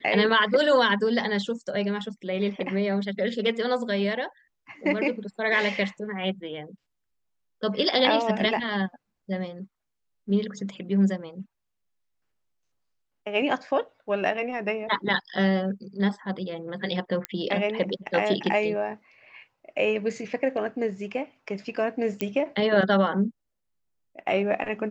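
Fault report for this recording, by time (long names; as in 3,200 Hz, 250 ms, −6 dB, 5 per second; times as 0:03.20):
0:17.25: click −12 dBFS
0:22.21: click −13 dBFS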